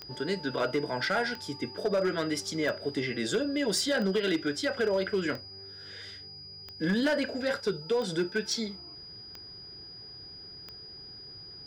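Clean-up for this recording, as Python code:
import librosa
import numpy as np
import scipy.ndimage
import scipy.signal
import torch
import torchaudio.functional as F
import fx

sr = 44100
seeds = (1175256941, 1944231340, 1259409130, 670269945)

y = fx.fix_declip(x, sr, threshold_db=-21.5)
y = fx.fix_declick_ar(y, sr, threshold=10.0)
y = fx.notch(y, sr, hz=4900.0, q=30.0)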